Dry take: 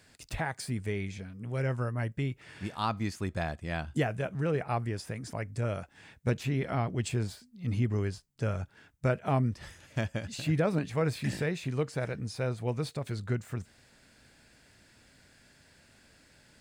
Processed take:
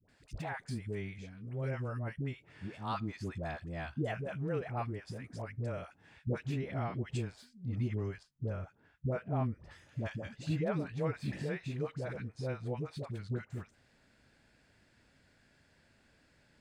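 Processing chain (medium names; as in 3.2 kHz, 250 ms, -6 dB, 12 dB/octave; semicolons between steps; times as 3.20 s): low-pass 3.5 kHz 6 dB/octave, from 8.14 s 1.1 kHz, from 9.62 s 3.1 kHz; phase dispersion highs, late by 89 ms, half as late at 650 Hz; trim -5.5 dB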